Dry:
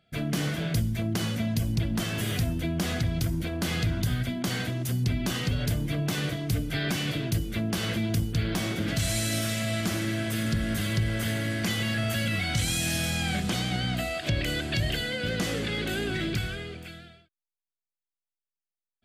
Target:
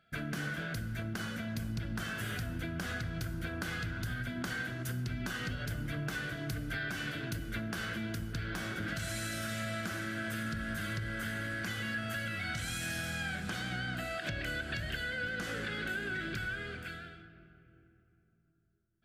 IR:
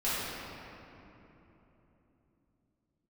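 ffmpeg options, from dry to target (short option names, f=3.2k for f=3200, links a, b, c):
-filter_complex "[0:a]equalizer=f=1.5k:t=o:w=0.51:g=14.5,acompressor=threshold=-30dB:ratio=6,asplit=2[a][b];[1:a]atrim=start_sample=2205,asetrate=48510,aresample=44100[c];[b][c]afir=irnorm=-1:irlink=0,volume=-18.5dB[d];[a][d]amix=inputs=2:normalize=0,volume=-5.5dB"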